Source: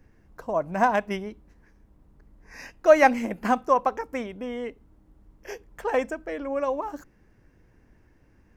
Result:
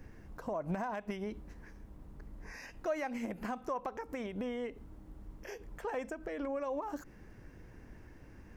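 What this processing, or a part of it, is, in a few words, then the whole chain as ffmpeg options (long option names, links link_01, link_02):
de-esser from a sidechain: -filter_complex "[0:a]asplit=2[link_01][link_02];[link_02]highpass=frequency=4700:poles=1,apad=whole_len=377655[link_03];[link_01][link_03]sidechaincompress=threshold=-60dB:ratio=3:attack=0.55:release=74,volume=5.5dB"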